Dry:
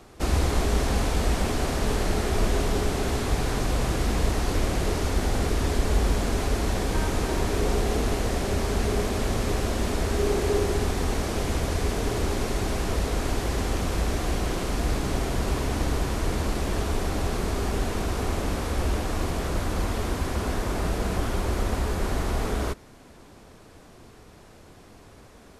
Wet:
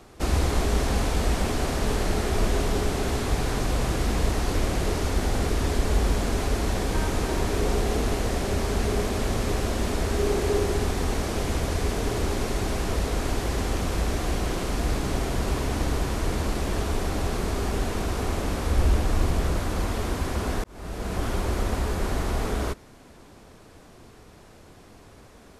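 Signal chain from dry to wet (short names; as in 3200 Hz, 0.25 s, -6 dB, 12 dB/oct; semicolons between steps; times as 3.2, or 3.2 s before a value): 18.65–19.54 low shelf 130 Hz +7 dB; 20.64–21.28 fade in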